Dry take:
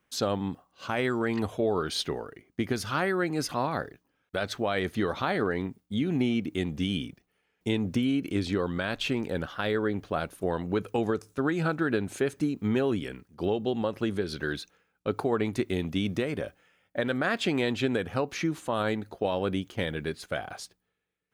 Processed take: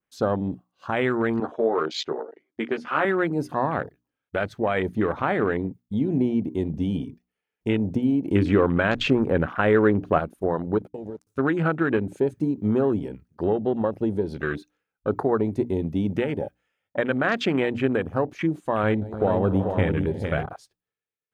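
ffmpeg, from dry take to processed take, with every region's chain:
-filter_complex "[0:a]asettb=1/sr,asplit=3[s0][s1][s2];[s0]atrim=end=1.404[s3];[s1]atrim=start=1.4:end=3.05,asetpts=PTS-STARTPTS,afade=t=in:d=0.004:c=qsin,afade=t=out:st=1.646:d=0.004:c=qsin,highpass=330,lowpass=4400,asplit=2[s4][s5];[s5]adelay=13,volume=0.631[s6];[s4][s6]amix=inputs=2:normalize=0,atrim=end_sample=72765[s7];[s2]atrim=start=3.046[s8];[s3][s7]acrossfade=d=0.004:c1=hsin:c2=qsin[s9];[s9][s8]acrossfade=d=0.004:c1=qsin:c2=hsin,asettb=1/sr,asplit=3[s10][s11][s12];[s10]atrim=end=8.264[s13];[s11]atrim=start=8.26:end=10.18,asetpts=PTS-STARTPTS,afade=t=in:d=0.004:c=qsin,afade=t=out:st=1.916:d=0.004:c=qsin,acontrast=23,adynamicequalizer=threshold=0.00794:dfrequency=3300:dqfactor=0.7:tfrequency=3300:tqfactor=0.7:attack=5:release=100:ratio=0.375:range=2.5:mode=cutabove:tftype=highshelf[s14];[s12]atrim=start=10.176[s15];[s13][s14]acrossfade=d=0.004:c1=hsin:c2=qsin[s16];[s16][s15]acrossfade=d=0.004:c1=qsin:c2=hsin,asettb=1/sr,asplit=3[s17][s18][s19];[s17]atrim=end=10.784[s20];[s18]atrim=start=10.78:end=11.27,asetpts=PTS-STARTPTS,afade=t=in:d=0.004:c=qsin,afade=t=out:st=0.486:d=0.004:c=qsin,aeval=exprs='sgn(val(0))*max(abs(val(0))-0.00596,0)':c=same,acompressor=threshold=0.0178:ratio=6:attack=3.2:release=140:knee=1:detection=peak[s21];[s19]atrim=start=11.266[s22];[s20][s21]acrossfade=d=0.004:c1=hsin:c2=qsin[s23];[s23][s22]acrossfade=d=0.004:c1=qsin:c2=hsin,asettb=1/sr,asplit=3[s24][s25][s26];[s24]atrim=end=18.834[s27];[s25]atrim=start=18.83:end=20.46,asetpts=PTS-STARTPTS,afade=t=in:d=0.004:c=qsin,afade=t=out:st=1.626:d=0.004:c=qsin,lowshelf=f=120:g=11.5,aecho=1:1:58|185|305|365|437:0.15|0.158|0.211|0.2|0.501,atrim=end_sample=71883[s28];[s26]atrim=start=20.456[s29];[s27][s28]acrossfade=d=0.004:c1=hsin:c2=qsin[s30];[s30][s29]acrossfade=d=0.004:c1=qsin:c2=hsin,bandreject=f=60:t=h:w=6,bandreject=f=120:t=h:w=6,bandreject=f=180:t=h:w=6,bandreject=f=240:t=h:w=6,bandreject=f=300:t=h:w=6,afwtdn=0.0178,adynamicequalizer=threshold=0.00282:dfrequency=4200:dqfactor=0.85:tfrequency=4200:tqfactor=0.85:attack=5:release=100:ratio=0.375:range=2.5:mode=cutabove:tftype=bell,volume=1.78"

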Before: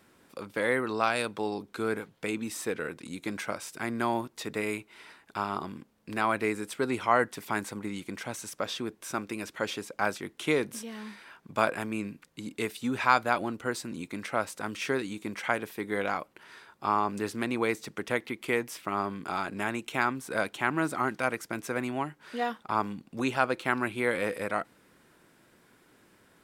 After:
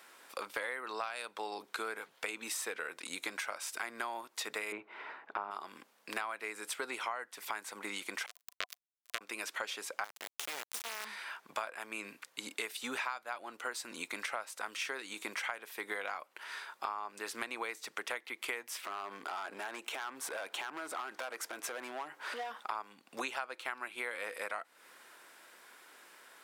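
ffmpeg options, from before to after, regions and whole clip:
-filter_complex "[0:a]asettb=1/sr,asplit=3[s0][s1][s2];[s0]atrim=end=4.724[s3];[s1]atrim=start=4.72:end=5.51,asetpts=PTS-STARTPTS,afade=t=in:d=0.004:c=qsin,afade=t=out:st=0.786:d=0.004:c=qsin,lowpass=2700,tiltshelf=f=1500:g=8.5[s4];[s2]atrim=start=5.506[s5];[s3][s4]acrossfade=d=0.004:c1=hsin:c2=qsin[s6];[s6][s5]acrossfade=d=0.004:c1=qsin:c2=hsin,asettb=1/sr,asplit=3[s7][s8][s9];[s7]atrim=end=8.264[s10];[s8]atrim=start=8.26:end=9.21,asetpts=PTS-STARTPTS,afade=t=in:d=0.004:c=qsin,afade=t=out:st=0.946:d=0.004:c=qsin,highshelf=f=3400:g=11.5,acrusher=bits=2:mix=0:aa=0.5,asuperstop=centerf=860:order=12:qfactor=3.2[s11];[s9]atrim=start=9.206[s12];[s10][s11]acrossfade=d=0.004:c1=hsin:c2=qsin[s13];[s13][s12]acrossfade=d=0.004:c1=qsin:c2=hsin,asettb=1/sr,asplit=3[s14][s15][s16];[s14]atrim=end=10.044[s17];[s15]atrim=start=10.04:end=11.05,asetpts=PTS-STARTPTS,afade=t=in:d=0.004:c=qsin,afade=t=out:st=1.006:d=0.004:c=qsin,equalizer=f=210:w=0.59:g=4.5,acompressor=threshold=0.02:ratio=5:attack=3.2:release=140:knee=1:detection=peak,acrusher=bits=3:dc=4:mix=0:aa=0.000001[s18];[s16]atrim=start=11.046[s19];[s17][s18]acrossfade=d=0.004:c1=hsin:c2=qsin[s20];[s20][s19]acrossfade=d=0.004:c1=qsin:c2=hsin,asettb=1/sr,asplit=3[s21][s22][s23];[s21]atrim=end=18.834[s24];[s22]atrim=start=18.83:end=22.59,asetpts=PTS-STARTPTS,afade=t=in:d=0.004:c=qsin,afade=t=out:st=3.756:d=0.004:c=qsin,equalizer=f=540:w=0.4:g=7,acompressor=threshold=0.01:ratio=3:attack=3.2:release=140:knee=1:detection=peak,volume=63.1,asoftclip=hard,volume=0.0158[s25];[s23]atrim=start=22.586[s26];[s24][s25]acrossfade=d=0.004:c1=hsin:c2=qsin[s27];[s27][s26]acrossfade=d=0.004:c1=qsin:c2=hsin,highpass=730,acompressor=threshold=0.00794:ratio=12,volume=2.24"

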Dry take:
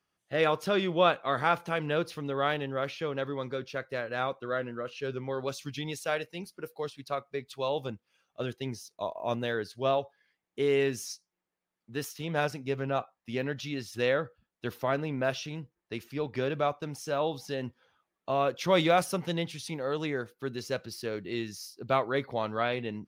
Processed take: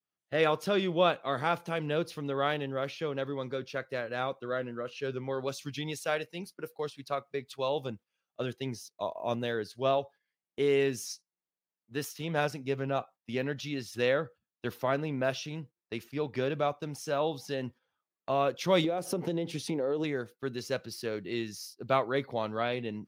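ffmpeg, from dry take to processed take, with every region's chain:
-filter_complex "[0:a]asettb=1/sr,asplit=3[s0][s1][s2];[s0]atrim=end=18.844[s3];[s1]atrim=start=18.84:end=20.04,asetpts=PTS-STARTPTS,afade=t=in:d=0.004:c=qsin,afade=t=out:st=1.196:d=0.004:c=qsin,equalizer=f=380:w=0.57:g=14,acompressor=threshold=0.0447:ratio=8:attack=3.2:release=140:knee=1:detection=peak[s4];[s2]atrim=start=20.036[s5];[s3][s4]acrossfade=d=0.004:c1=hsin:c2=qsin[s6];[s6][s5]acrossfade=d=0.004:c1=qsin:c2=hsin,highpass=87,agate=range=0.224:threshold=0.00398:ratio=16:detection=peak,adynamicequalizer=threshold=0.00794:dfrequency=1400:dqfactor=0.73:tfrequency=1400:tqfactor=0.73:attack=5:release=100:ratio=0.375:range=2.5:mode=cutabove:tftype=bell"

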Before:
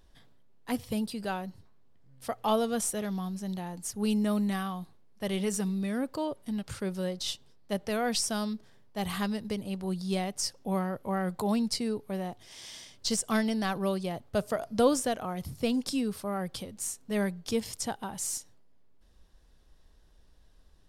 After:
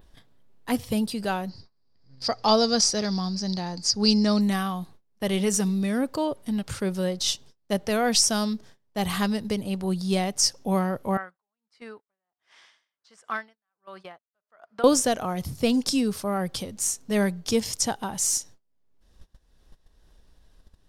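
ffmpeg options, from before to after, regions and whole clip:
-filter_complex "[0:a]asettb=1/sr,asplit=3[s0][s1][s2];[s0]atrim=end=1.494[s3];[s1]atrim=start=1.49:end=4.41,asetpts=PTS-STARTPTS,afade=t=in:d=0.004:c=qsin,afade=t=out:st=2.916:d=0.004:c=qsin,lowpass=f=4800:t=q:w=14,equalizer=f=3100:t=o:w=0.48:g=-6.5[s4];[s2]atrim=start=4.406[s5];[s3][s4]acrossfade=d=0.004:c1=hsin:c2=qsin[s6];[s6][s5]acrossfade=d=0.004:c1=qsin:c2=hsin,asettb=1/sr,asplit=3[s7][s8][s9];[s7]atrim=end=11.174[s10];[s8]atrim=start=11.17:end=14.84,asetpts=PTS-STARTPTS,afade=t=in:d=0.004:c=qsin,afade=t=out:st=3.666:d=0.004:c=qsin,bandpass=f=1400:t=q:w=1.9,aeval=exprs='val(0)*pow(10,-36*(0.5-0.5*cos(2*PI*1.4*n/s))/20)':c=same[s11];[s9]atrim=start=14.836[s12];[s10][s11]acrossfade=d=0.004:c1=hsin:c2=qsin[s13];[s13][s12]acrossfade=d=0.004:c1=qsin:c2=hsin,agate=range=0.0708:threshold=0.00251:ratio=16:detection=peak,adynamicequalizer=threshold=0.00316:dfrequency=6000:dqfactor=2.1:tfrequency=6000:tqfactor=2.1:attack=5:release=100:ratio=0.375:range=3.5:mode=boostabove:tftype=bell,acompressor=mode=upward:threshold=0.00708:ratio=2.5,volume=2"

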